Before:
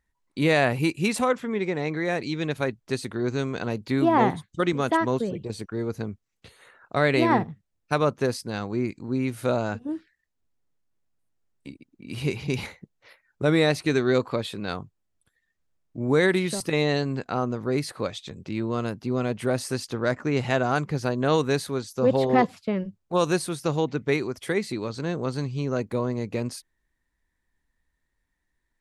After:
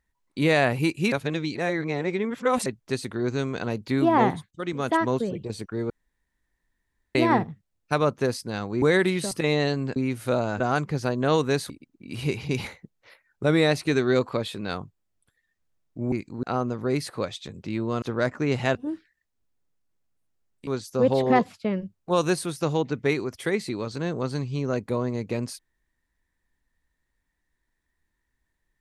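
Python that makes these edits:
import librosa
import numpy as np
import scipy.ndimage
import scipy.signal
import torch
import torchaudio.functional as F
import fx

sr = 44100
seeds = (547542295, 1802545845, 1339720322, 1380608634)

y = fx.edit(x, sr, fx.reverse_span(start_s=1.12, length_s=1.54),
    fx.fade_in_from(start_s=4.51, length_s=0.46, floor_db=-14.5),
    fx.room_tone_fill(start_s=5.9, length_s=1.25),
    fx.swap(start_s=8.82, length_s=0.31, other_s=16.11, other_length_s=1.14),
    fx.swap(start_s=9.77, length_s=1.92, other_s=20.6, other_length_s=1.1),
    fx.cut(start_s=18.84, length_s=1.03), tone=tone)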